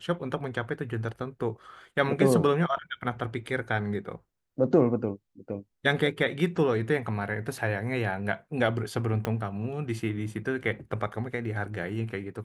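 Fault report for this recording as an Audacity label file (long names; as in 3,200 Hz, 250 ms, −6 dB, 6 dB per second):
9.250000	9.250000	click −15 dBFS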